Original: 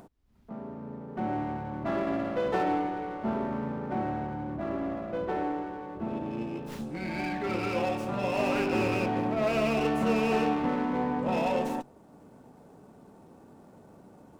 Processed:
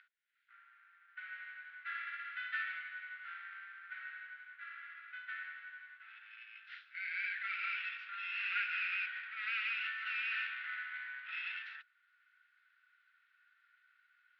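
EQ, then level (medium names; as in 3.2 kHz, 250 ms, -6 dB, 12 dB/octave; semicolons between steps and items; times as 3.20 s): rippled Chebyshev high-pass 1.4 kHz, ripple 3 dB; low-pass 3.8 kHz 24 dB/octave; distance through air 310 m; +6.5 dB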